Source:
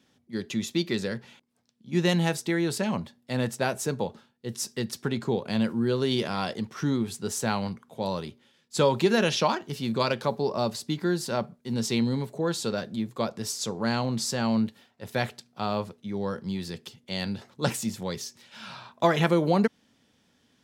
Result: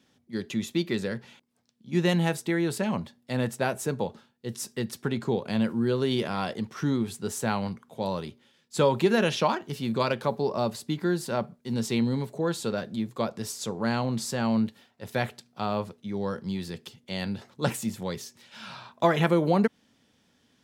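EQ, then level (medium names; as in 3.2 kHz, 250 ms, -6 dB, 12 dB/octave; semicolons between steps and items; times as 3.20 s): dynamic bell 5.3 kHz, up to -6 dB, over -46 dBFS, Q 1.2; 0.0 dB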